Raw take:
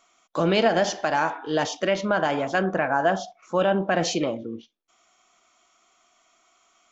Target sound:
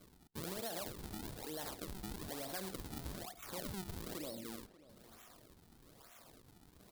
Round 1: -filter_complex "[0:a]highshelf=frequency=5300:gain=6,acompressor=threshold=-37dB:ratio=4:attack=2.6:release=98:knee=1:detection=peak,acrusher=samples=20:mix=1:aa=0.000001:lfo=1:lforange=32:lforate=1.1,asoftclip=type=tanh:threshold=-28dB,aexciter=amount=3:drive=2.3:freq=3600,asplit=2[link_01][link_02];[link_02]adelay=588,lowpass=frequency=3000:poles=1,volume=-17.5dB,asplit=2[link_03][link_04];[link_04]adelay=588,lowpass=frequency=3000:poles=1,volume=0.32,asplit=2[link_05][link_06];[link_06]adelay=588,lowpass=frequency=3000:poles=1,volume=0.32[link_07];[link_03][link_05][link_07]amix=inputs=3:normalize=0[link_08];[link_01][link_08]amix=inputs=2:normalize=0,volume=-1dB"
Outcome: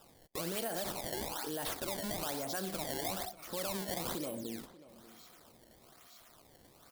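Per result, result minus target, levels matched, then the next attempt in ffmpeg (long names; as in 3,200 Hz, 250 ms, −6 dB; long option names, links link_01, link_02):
downward compressor: peak gain reduction −6.5 dB; sample-and-hold swept by an LFO: distortion −5 dB
-filter_complex "[0:a]highshelf=frequency=5300:gain=6,acompressor=threshold=-45.5dB:ratio=4:attack=2.6:release=98:knee=1:detection=peak,acrusher=samples=20:mix=1:aa=0.000001:lfo=1:lforange=32:lforate=1.1,asoftclip=type=tanh:threshold=-28dB,aexciter=amount=3:drive=2.3:freq=3600,asplit=2[link_01][link_02];[link_02]adelay=588,lowpass=frequency=3000:poles=1,volume=-17.5dB,asplit=2[link_03][link_04];[link_04]adelay=588,lowpass=frequency=3000:poles=1,volume=0.32,asplit=2[link_05][link_06];[link_06]adelay=588,lowpass=frequency=3000:poles=1,volume=0.32[link_07];[link_03][link_05][link_07]amix=inputs=3:normalize=0[link_08];[link_01][link_08]amix=inputs=2:normalize=0,volume=-1dB"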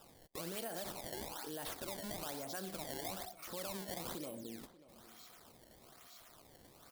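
sample-and-hold swept by an LFO: distortion −5 dB
-filter_complex "[0:a]highshelf=frequency=5300:gain=6,acompressor=threshold=-45.5dB:ratio=4:attack=2.6:release=98:knee=1:detection=peak,acrusher=samples=46:mix=1:aa=0.000001:lfo=1:lforange=73.6:lforate=1.1,asoftclip=type=tanh:threshold=-28dB,aexciter=amount=3:drive=2.3:freq=3600,asplit=2[link_01][link_02];[link_02]adelay=588,lowpass=frequency=3000:poles=1,volume=-17.5dB,asplit=2[link_03][link_04];[link_04]adelay=588,lowpass=frequency=3000:poles=1,volume=0.32,asplit=2[link_05][link_06];[link_06]adelay=588,lowpass=frequency=3000:poles=1,volume=0.32[link_07];[link_03][link_05][link_07]amix=inputs=3:normalize=0[link_08];[link_01][link_08]amix=inputs=2:normalize=0,volume=-1dB"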